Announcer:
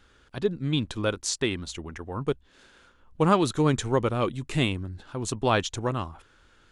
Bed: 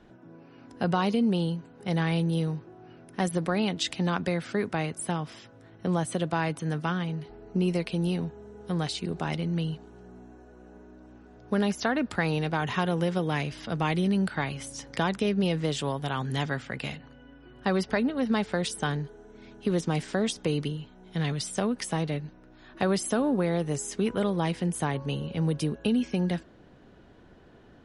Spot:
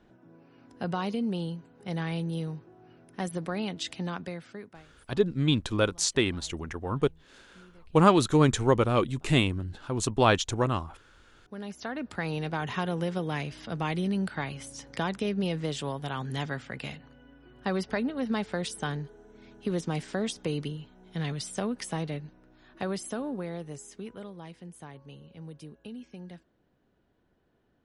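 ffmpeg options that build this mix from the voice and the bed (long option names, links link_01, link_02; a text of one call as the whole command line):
ffmpeg -i stem1.wav -i stem2.wav -filter_complex "[0:a]adelay=4750,volume=1.5dB[link_01];[1:a]volume=20dB,afade=type=out:start_time=3.96:duration=0.9:silence=0.0668344,afade=type=in:start_time=11.29:duration=1.19:silence=0.0530884,afade=type=out:start_time=21.94:duration=2.41:silence=0.211349[link_02];[link_01][link_02]amix=inputs=2:normalize=0" out.wav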